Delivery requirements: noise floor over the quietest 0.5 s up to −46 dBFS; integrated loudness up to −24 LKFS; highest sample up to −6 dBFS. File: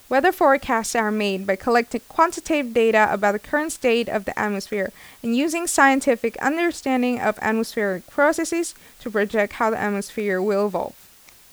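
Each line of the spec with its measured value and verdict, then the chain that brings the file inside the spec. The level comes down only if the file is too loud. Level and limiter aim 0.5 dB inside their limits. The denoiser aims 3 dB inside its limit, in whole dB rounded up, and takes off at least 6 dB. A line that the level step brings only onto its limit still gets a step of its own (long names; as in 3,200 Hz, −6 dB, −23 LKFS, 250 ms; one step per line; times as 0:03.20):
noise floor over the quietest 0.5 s −50 dBFS: in spec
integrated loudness −21.5 LKFS: out of spec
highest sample −3.5 dBFS: out of spec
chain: level −3 dB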